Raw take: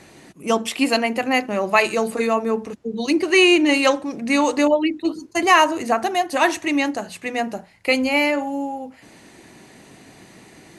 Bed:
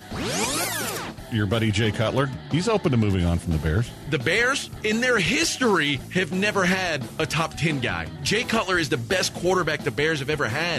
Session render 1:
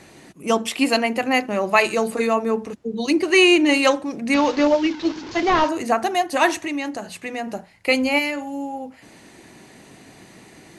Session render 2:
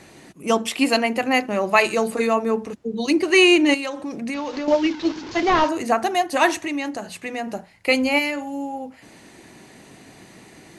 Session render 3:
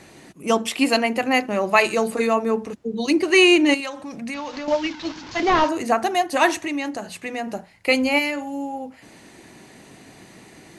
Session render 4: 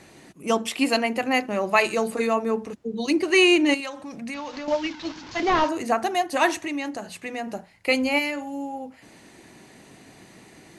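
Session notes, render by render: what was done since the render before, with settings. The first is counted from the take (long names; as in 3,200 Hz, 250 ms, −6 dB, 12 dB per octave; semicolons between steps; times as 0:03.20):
0:04.34–0:05.69: linear delta modulator 32 kbit/s, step −28.5 dBFS; 0:06.66–0:07.48: downward compressor 2 to 1, threshold −27 dBFS; 0:08.18–0:08.73: parametric band 640 Hz −10.5 dB → −2.5 dB 2.7 octaves
0:03.74–0:04.68: downward compressor 8 to 1, threshold −24 dBFS
0:03.80–0:05.40: parametric band 380 Hz −10.5 dB
level −3 dB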